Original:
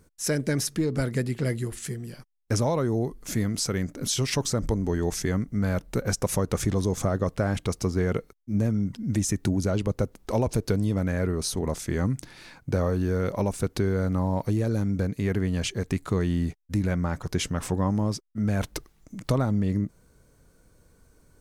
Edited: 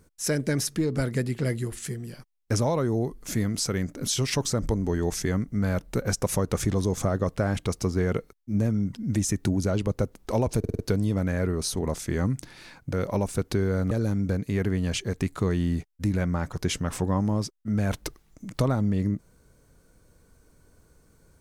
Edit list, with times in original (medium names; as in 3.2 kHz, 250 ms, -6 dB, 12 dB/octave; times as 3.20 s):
10.59 s: stutter 0.05 s, 5 plays
12.73–13.18 s: delete
14.16–14.61 s: delete